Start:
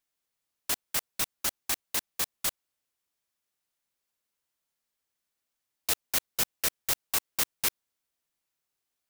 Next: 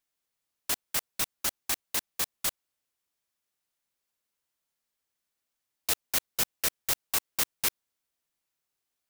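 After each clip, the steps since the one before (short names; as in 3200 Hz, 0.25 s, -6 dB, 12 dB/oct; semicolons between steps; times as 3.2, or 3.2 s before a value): nothing audible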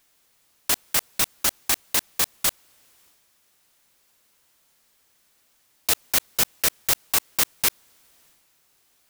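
transient shaper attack 0 dB, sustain +6 dB; in parallel at +2.5 dB: negative-ratio compressor -38 dBFS, ratio -1; on the sum: gain +4.5 dB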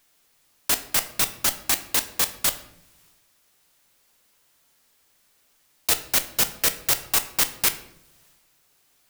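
shoebox room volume 160 m³, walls mixed, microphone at 0.34 m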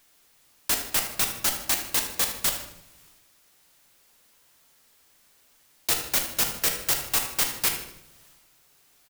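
soft clip -20.5 dBFS, distortion -9 dB; feedback echo 77 ms, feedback 42%, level -12 dB; gain +2.5 dB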